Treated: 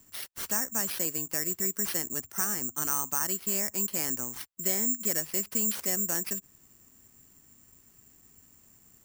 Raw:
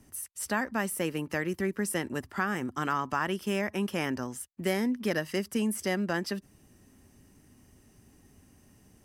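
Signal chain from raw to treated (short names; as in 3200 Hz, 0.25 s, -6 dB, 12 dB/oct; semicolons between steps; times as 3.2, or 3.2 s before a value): careless resampling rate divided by 6×, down none, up zero stuff; gain -7.5 dB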